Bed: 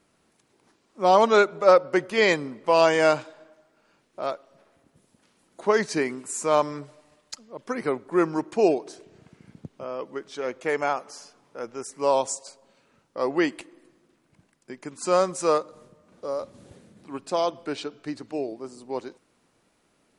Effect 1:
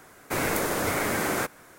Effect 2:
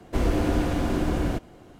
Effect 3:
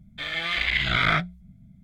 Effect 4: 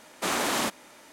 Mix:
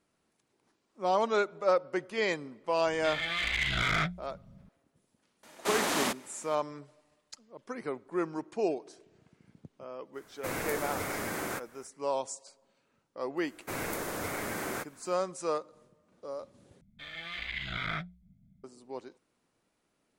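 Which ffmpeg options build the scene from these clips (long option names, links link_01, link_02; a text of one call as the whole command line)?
ffmpeg -i bed.wav -i cue0.wav -i cue1.wav -i cue2.wav -i cue3.wav -filter_complex "[3:a]asplit=2[link_01][link_02];[1:a]asplit=2[link_03][link_04];[0:a]volume=-10dB[link_05];[link_01]asoftclip=type=tanh:threshold=-18.5dB[link_06];[link_02]equalizer=frequency=190:width_type=o:width=0.77:gain=2.5[link_07];[link_05]asplit=2[link_08][link_09];[link_08]atrim=end=16.814[link_10];[link_07]atrim=end=1.83,asetpts=PTS-STARTPTS,volume=-13.5dB[link_11];[link_09]atrim=start=18.636[link_12];[link_06]atrim=end=1.83,asetpts=PTS-STARTPTS,volume=-4dB,afade=type=in:duration=0.004:curve=hsin,afade=type=out:start_time=1.826:duration=0.004:curve=hsin,adelay=2860[link_13];[4:a]atrim=end=1.12,asetpts=PTS-STARTPTS,volume=-3dB,afade=type=in:duration=0.004:curve=hsin,afade=type=out:start_time=1.116:duration=0.004:curve=hsin,adelay=5430[link_14];[link_03]atrim=end=1.78,asetpts=PTS-STARTPTS,volume=-8.5dB,afade=type=in:duration=0.05,afade=type=out:start_time=1.73:duration=0.05,adelay=10130[link_15];[link_04]atrim=end=1.78,asetpts=PTS-STARTPTS,volume=-9dB,afade=type=in:duration=0.004:curve=hsin,afade=type=out:start_time=1.776:duration=0.004:curve=hsin,adelay=13370[link_16];[link_10][link_11]acrossfade=duration=0.004:curve1=hsin:curve2=hsin[link_17];[link_17][link_12]acrossfade=duration=0.004:curve1=hsin:curve2=hsin[link_18];[link_18][link_13][link_14][link_15][link_16]amix=inputs=5:normalize=0" out.wav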